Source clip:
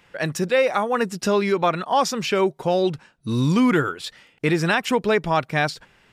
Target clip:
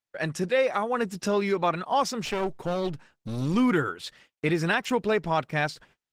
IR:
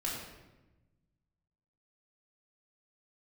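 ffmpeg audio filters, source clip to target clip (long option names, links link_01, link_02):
-filter_complex "[0:a]agate=range=-39dB:threshold=-49dB:ratio=16:detection=peak,asettb=1/sr,asplit=3[link_01][link_02][link_03];[link_01]atrim=end=2.254[link_04];[link_02]atrim=start=2.25:end=3.54,asetpts=PTS-STARTPTS,afade=type=in:duration=0.004:curve=qsin,afade=type=out:start_time=1.286:duration=0.004:curve=qsin,aeval=exprs='clip(val(0),-1,0.0316)':channel_layout=same[link_05];[link_03]atrim=start=3.536[link_06];[link_04][link_05]acrossfade=duration=0.004:curve1=hsin:curve2=qsin[link_07];[link_07][link_06]acrossfade=duration=0.004:curve1=qsin:curve2=hsin,volume=-4.5dB" -ar 48000 -c:a libopus -b:a 16k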